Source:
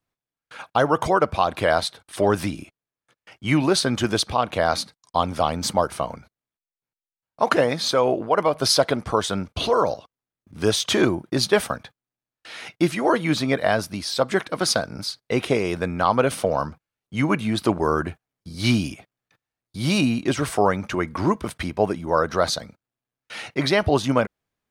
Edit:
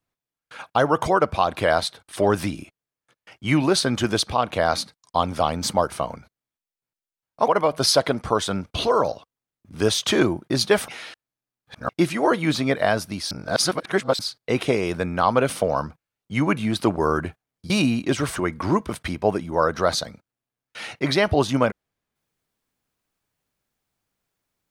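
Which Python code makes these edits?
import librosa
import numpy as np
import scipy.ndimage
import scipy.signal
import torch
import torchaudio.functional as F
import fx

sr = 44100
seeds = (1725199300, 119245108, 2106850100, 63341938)

y = fx.edit(x, sr, fx.cut(start_s=7.48, length_s=0.82),
    fx.reverse_span(start_s=11.7, length_s=1.01),
    fx.reverse_span(start_s=14.13, length_s=0.88),
    fx.cut(start_s=18.52, length_s=1.37),
    fx.cut(start_s=20.55, length_s=0.36), tone=tone)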